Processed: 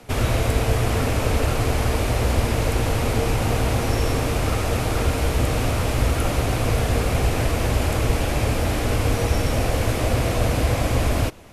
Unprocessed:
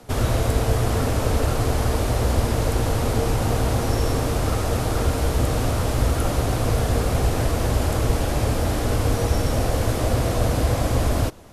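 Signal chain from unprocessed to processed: bell 2400 Hz +7 dB 0.7 oct

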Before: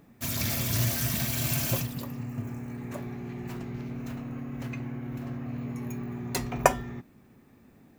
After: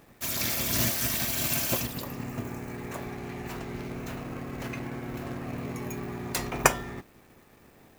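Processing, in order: spectral limiter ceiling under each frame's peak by 13 dB; in parallel at -5 dB: companded quantiser 4-bit; on the sum: gain -4 dB

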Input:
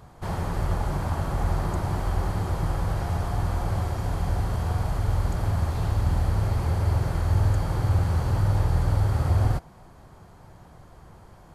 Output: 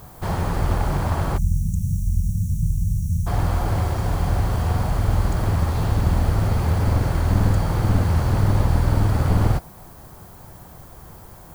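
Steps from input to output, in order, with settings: one-sided fold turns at -21.5 dBFS; spectral delete 1.37–3.27, 230–5500 Hz; added noise violet -55 dBFS; gain +5.5 dB

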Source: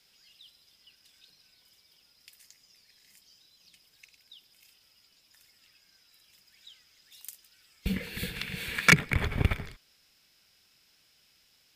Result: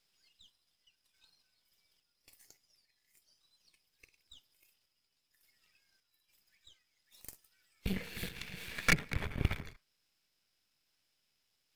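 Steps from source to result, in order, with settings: half-wave gain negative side -12 dB; spectral noise reduction 8 dB; random-step tremolo

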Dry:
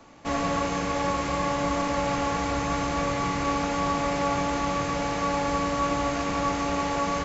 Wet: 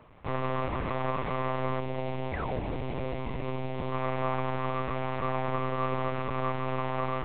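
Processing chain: 1.79–3.93 bell 1300 Hz -14.5 dB 0.91 oct; 2.32–2.6 painted sound fall 380–2400 Hz -34 dBFS; air absorption 190 m; monotone LPC vocoder at 8 kHz 130 Hz; gain -3 dB

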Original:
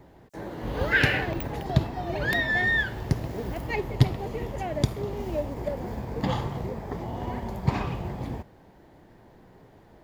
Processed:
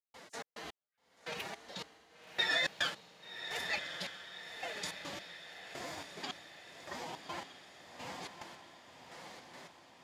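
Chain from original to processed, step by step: reverse; compressor 6:1, threshold -39 dBFS, peak gain reduction 24.5 dB; reverse; weighting filter ITU-R 468; formant-preserving pitch shift +6 st; step gate ".xx.x..." 107 bpm -60 dB; diffused feedback echo 1.132 s, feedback 54%, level -8 dB; gain +5 dB

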